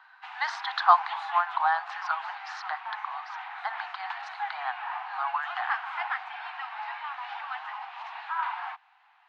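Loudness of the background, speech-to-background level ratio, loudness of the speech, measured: -36.0 LUFS, 6.0 dB, -30.0 LUFS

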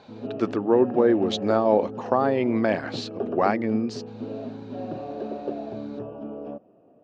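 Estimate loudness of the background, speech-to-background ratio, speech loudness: -34.0 LUFS, 10.5 dB, -23.5 LUFS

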